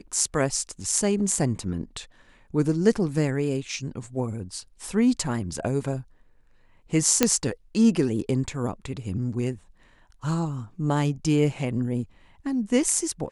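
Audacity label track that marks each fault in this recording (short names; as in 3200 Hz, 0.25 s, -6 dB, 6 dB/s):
7.230000	7.230000	pop -2 dBFS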